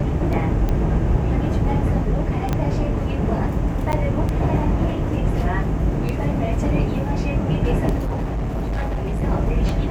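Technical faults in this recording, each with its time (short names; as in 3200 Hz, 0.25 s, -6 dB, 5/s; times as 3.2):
tick 33 1/3 rpm -12 dBFS
2.53 pop -9 dBFS
3.92–3.93 gap 9.9 ms
7.98–9.24 clipped -20 dBFS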